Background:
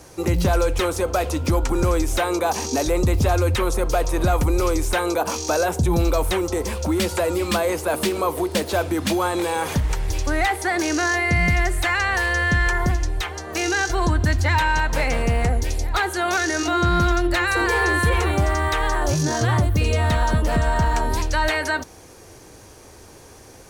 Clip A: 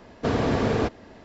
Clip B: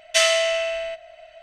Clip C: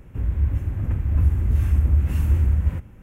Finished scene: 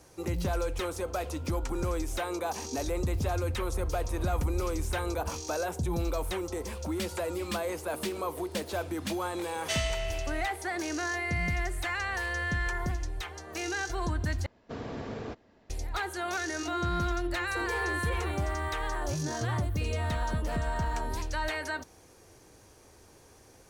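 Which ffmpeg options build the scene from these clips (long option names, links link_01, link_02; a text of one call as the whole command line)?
ffmpeg -i bed.wav -i cue0.wav -i cue1.wav -i cue2.wav -filter_complex "[0:a]volume=-11.5dB,asplit=2[link_01][link_02];[link_01]atrim=end=14.464[link_03];[1:a]atrim=end=1.24,asetpts=PTS-STARTPTS,volume=-15dB[link_04];[link_02]atrim=start=15.696[link_05];[3:a]atrim=end=3.02,asetpts=PTS-STARTPTS,volume=-18dB,afade=type=in:duration=0.004:curve=hsin,afade=type=out:start_time=3.016:duration=0.004:curve=hsin,adelay=2600[link_06];[2:a]atrim=end=1.42,asetpts=PTS-STARTPTS,volume=-14dB,afade=type=in:duration=0.004:curve=hsin,afade=type=out:start_time=1.416:duration=0.004:curve=hsin,adelay=420714S[link_07];[link_03][link_04]acrossfade=duration=0.004:curve1=hsin:curve2=hsin[link_08];[link_08][link_05]acrossfade=duration=0.004:curve1=hsin:curve2=hsin[link_09];[link_09][link_06][link_07]amix=inputs=3:normalize=0" out.wav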